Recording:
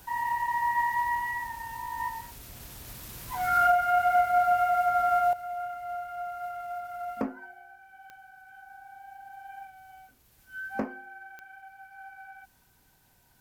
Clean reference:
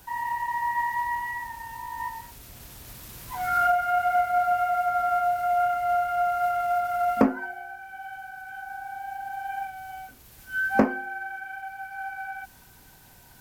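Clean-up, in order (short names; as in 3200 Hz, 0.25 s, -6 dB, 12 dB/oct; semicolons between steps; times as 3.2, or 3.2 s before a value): de-click; gain correction +11.5 dB, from 5.33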